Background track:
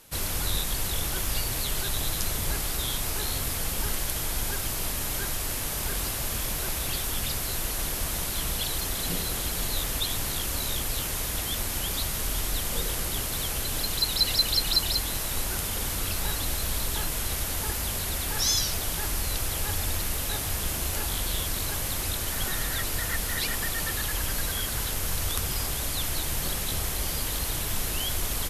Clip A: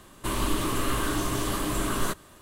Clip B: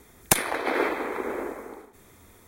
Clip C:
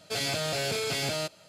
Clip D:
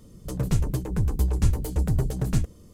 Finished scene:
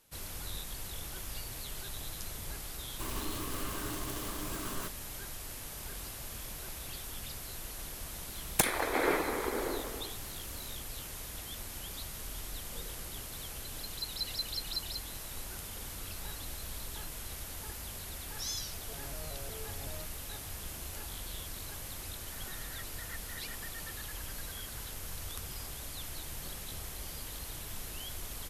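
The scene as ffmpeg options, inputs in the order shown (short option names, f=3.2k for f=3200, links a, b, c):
-filter_complex "[0:a]volume=-13dB[a];[1:a]acrusher=bits=6:dc=4:mix=0:aa=0.000001[b];[2:a]asoftclip=type=tanh:threshold=-9.5dB[c];[3:a]lowpass=1.2k[d];[b]atrim=end=2.41,asetpts=PTS-STARTPTS,volume=-12.5dB,afade=t=in:d=0.004:c=hsin,afade=t=out:st=2.406:d=0.004:c=hsin,adelay=2750[e];[c]atrim=end=2.47,asetpts=PTS-STARTPTS,volume=-4dB,afade=t=in:d=0.004:c=hsin,afade=t=out:st=2.466:d=0.004:c=hsin,adelay=8280[f];[d]atrim=end=1.48,asetpts=PTS-STARTPTS,volume=-16dB,afade=t=in:d=0.004:c=hsin,afade=t=out:st=1.476:d=0.004:c=hsin,adelay=18780[g];[a][e][f][g]amix=inputs=4:normalize=0"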